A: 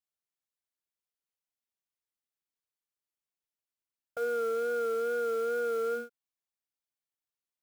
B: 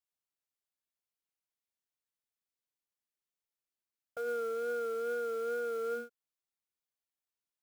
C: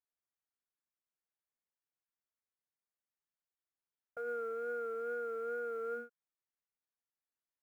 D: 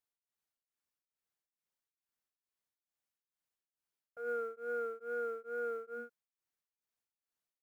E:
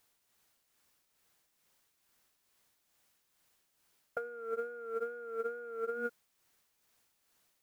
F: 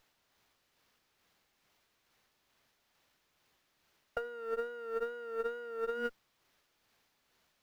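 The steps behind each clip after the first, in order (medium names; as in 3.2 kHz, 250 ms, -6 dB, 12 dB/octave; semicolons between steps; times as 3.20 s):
peak limiter -26.5 dBFS, peak gain reduction 3.5 dB; trim -3 dB
resonant high shelf 2.5 kHz -11 dB, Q 1.5; trim -4.5 dB
tremolo of two beating tones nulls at 2.3 Hz; trim +2.5 dB
compressor with a negative ratio -50 dBFS, ratio -1; trim +9.5 dB
sliding maximum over 5 samples; trim +1 dB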